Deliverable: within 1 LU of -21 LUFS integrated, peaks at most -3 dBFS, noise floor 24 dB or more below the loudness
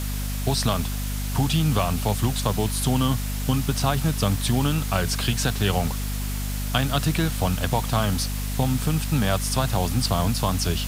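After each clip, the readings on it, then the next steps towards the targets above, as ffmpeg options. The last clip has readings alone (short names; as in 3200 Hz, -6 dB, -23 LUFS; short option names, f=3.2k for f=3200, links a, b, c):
hum 50 Hz; harmonics up to 250 Hz; hum level -25 dBFS; noise floor -28 dBFS; noise floor target -48 dBFS; loudness -24.0 LUFS; peak -7.5 dBFS; loudness target -21.0 LUFS
-> -af "bandreject=f=50:t=h:w=4,bandreject=f=100:t=h:w=4,bandreject=f=150:t=h:w=4,bandreject=f=200:t=h:w=4,bandreject=f=250:t=h:w=4"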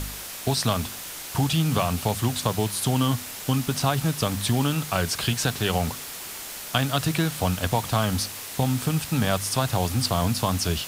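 hum none; noise floor -37 dBFS; noise floor target -49 dBFS
-> -af "afftdn=nr=12:nf=-37"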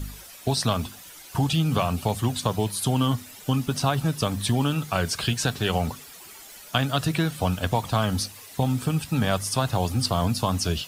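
noise floor -45 dBFS; noise floor target -50 dBFS
-> -af "afftdn=nr=6:nf=-45"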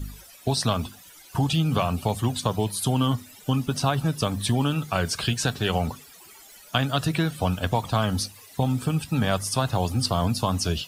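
noise floor -49 dBFS; noise floor target -50 dBFS
-> -af "afftdn=nr=6:nf=-49"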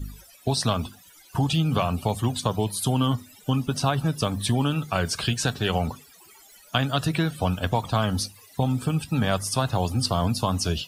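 noise floor -52 dBFS; loudness -25.5 LUFS; peak -9.0 dBFS; loudness target -21.0 LUFS
-> -af "volume=4.5dB"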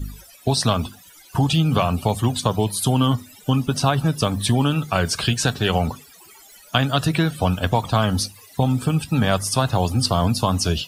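loudness -21.0 LUFS; peak -4.5 dBFS; noise floor -48 dBFS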